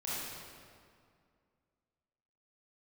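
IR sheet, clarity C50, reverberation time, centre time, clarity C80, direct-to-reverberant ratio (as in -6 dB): -5.0 dB, 2.2 s, 0.146 s, -1.5 dB, -9.0 dB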